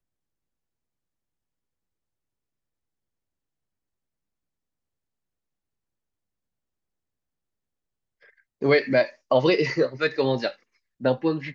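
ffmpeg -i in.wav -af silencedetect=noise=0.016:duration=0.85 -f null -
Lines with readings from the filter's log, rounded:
silence_start: 0.00
silence_end: 8.62 | silence_duration: 8.62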